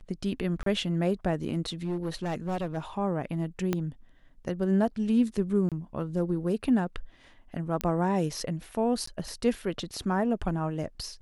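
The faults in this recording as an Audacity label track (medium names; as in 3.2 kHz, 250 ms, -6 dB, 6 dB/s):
0.630000	0.660000	dropout 33 ms
1.840000	2.780000	clipped -26.5 dBFS
3.730000	3.730000	pop -14 dBFS
5.690000	5.720000	dropout 27 ms
7.810000	7.810000	pop -14 dBFS
9.060000	9.070000	dropout 14 ms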